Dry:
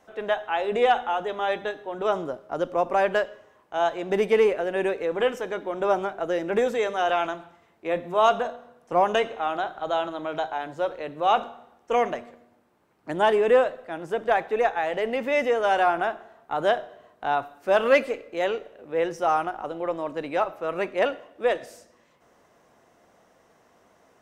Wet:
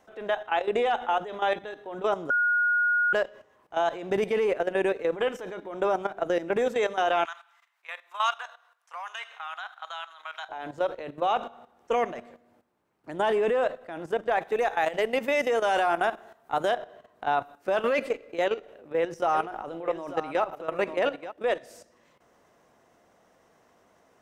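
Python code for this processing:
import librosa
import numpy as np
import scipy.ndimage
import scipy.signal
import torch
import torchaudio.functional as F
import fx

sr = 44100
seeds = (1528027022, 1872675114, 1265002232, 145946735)

y = fx.highpass(x, sr, hz=1100.0, slope=24, at=(7.25, 10.49))
y = fx.high_shelf(y, sr, hz=5600.0, db=10.5, at=(14.41, 16.74))
y = fx.echo_single(y, sr, ms=894, db=-9.5, at=(19.33, 21.3), fade=0.02)
y = fx.edit(y, sr, fx.bleep(start_s=2.3, length_s=0.83, hz=1440.0, db=-15.5), tone=tone)
y = fx.level_steps(y, sr, step_db=13)
y = y * 10.0 ** (2.5 / 20.0)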